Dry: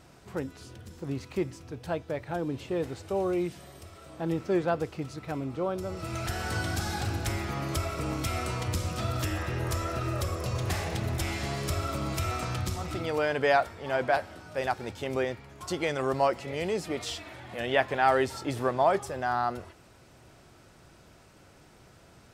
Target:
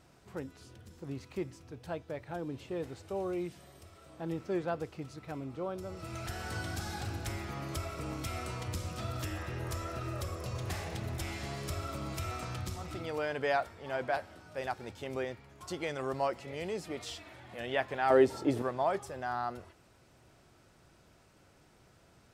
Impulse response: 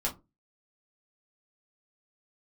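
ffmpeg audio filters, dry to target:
-filter_complex "[0:a]asettb=1/sr,asplit=3[link_01][link_02][link_03];[link_01]atrim=end=18.104[link_04];[link_02]atrim=start=18.1:end=18.62,asetpts=PTS-STARTPTS,afade=type=in:duration=0.004:curve=qsin,afade=type=out:start_time=0.516:duration=0.004:curve=qsin,equalizer=frequency=350:width_type=o:width=2.4:gain=11.5[link_05];[link_03]atrim=start=18.616[link_06];[link_04][link_05]acrossfade=duration=0.004:curve1=hsin:curve2=qsin[link_07];[link_07][link_06]acrossfade=duration=0.004:curve1=qsin:curve2=hsin,volume=-7dB"

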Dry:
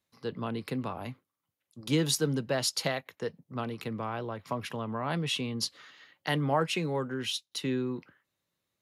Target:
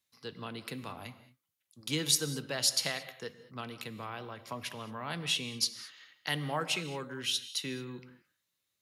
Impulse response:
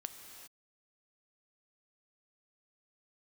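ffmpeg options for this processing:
-filter_complex "[0:a]tiltshelf=frequency=1300:gain=-8,asplit=2[link_01][link_02];[1:a]atrim=start_sample=2205,asetrate=79380,aresample=44100,lowshelf=frequency=450:gain=9.5[link_03];[link_02][link_03]afir=irnorm=-1:irlink=0,volume=5.5dB[link_04];[link_01][link_04]amix=inputs=2:normalize=0,volume=-9dB"

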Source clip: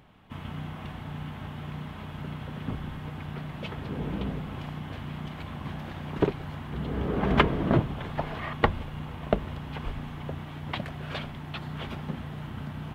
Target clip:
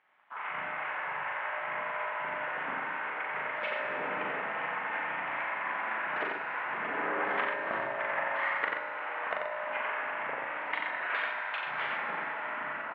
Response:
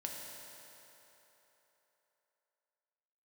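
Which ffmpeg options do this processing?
-filter_complex "[0:a]highpass=820,afwtdn=0.00398,acompressor=threshold=-41dB:ratio=10,lowpass=frequency=2000:width_type=q:width=2.1,aecho=1:1:89:0.631,asplit=2[link_01][link_02];[1:a]atrim=start_sample=2205,adelay=40[link_03];[link_02][link_03]afir=irnorm=-1:irlink=0,volume=0.5dB[link_04];[link_01][link_04]amix=inputs=2:normalize=0,volume=5.5dB"

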